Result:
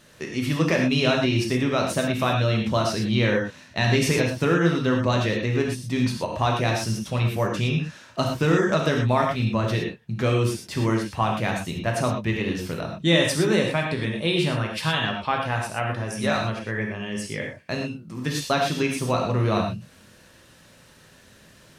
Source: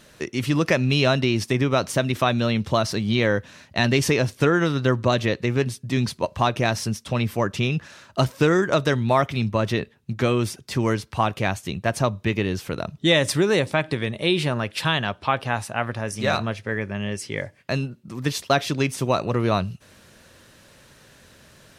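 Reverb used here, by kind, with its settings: non-linear reverb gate 0.14 s flat, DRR 0 dB; gain -4 dB

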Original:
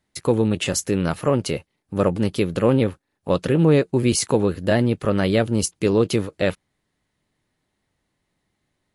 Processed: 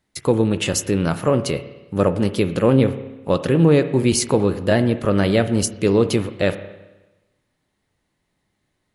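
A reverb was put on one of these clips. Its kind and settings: spring tank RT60 1.1 s, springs 30/53 ms, chirp 75 ms, DRR 11 dB; gain +1.5 dB

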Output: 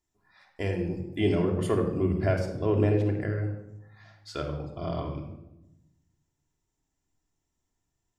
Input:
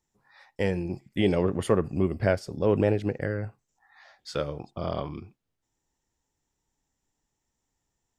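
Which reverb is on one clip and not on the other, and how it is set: shoebox room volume 3200 m³, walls furnished, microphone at 3.1 m; gain -5 dB

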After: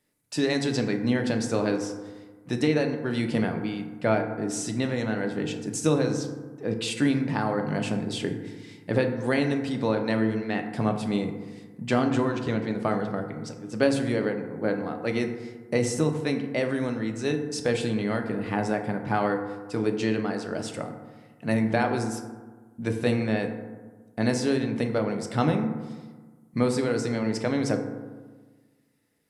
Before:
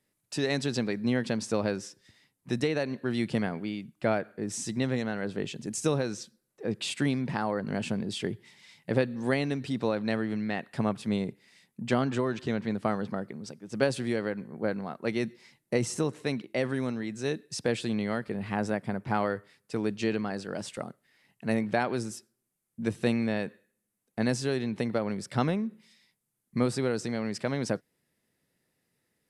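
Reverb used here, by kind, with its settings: FDN reverb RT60 1.4 s, low-frequency decay 1.2×, high-frequency decay 0.35×, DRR 4 dB; gain +2 dB

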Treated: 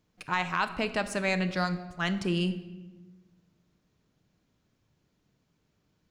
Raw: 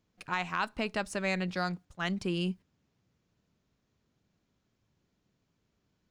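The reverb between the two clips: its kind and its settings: shoebox room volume 760 m³, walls mixed, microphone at 0.49 m; gain +3 dB

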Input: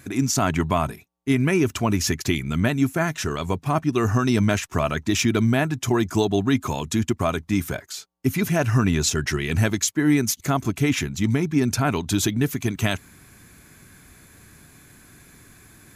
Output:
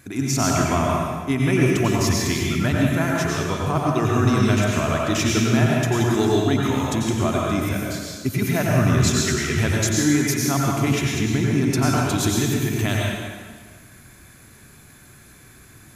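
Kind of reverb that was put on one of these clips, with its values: plate-style reverb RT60 1.6 s, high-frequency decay 0.85×, pre-delay 80 ms, DRR -3 dB; gain -2.5 dB

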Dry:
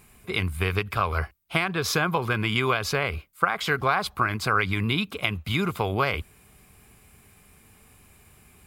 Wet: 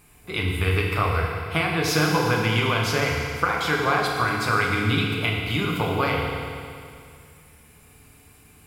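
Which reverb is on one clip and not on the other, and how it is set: FDN reverb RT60 2.3 s, low-frequency decay 1.05×, high-frequency decay 1×, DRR -2 dB; gain -1.5 dB

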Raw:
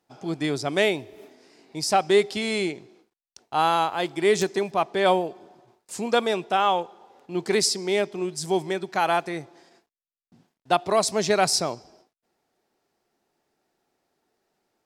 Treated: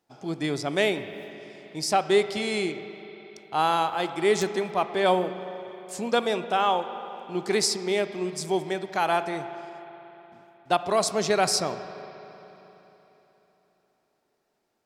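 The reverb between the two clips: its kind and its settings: spring tank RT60 3.6 s, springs 38/60 ms, chirp 35 ms, DRR 10.5 dB; gain -2 dB

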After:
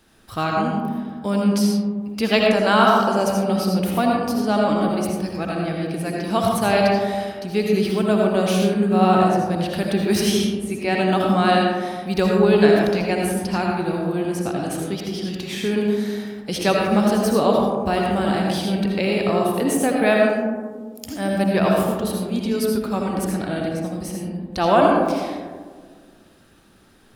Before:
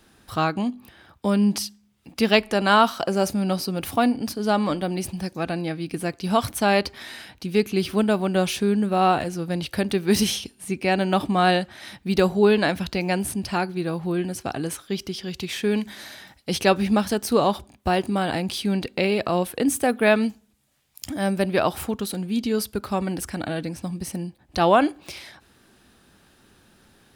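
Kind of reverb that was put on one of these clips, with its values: digital reverb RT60 1.7 s, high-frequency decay 0.25×, pre-delay 40 ms, DRR -1.5 dB; gain -1.5 dB

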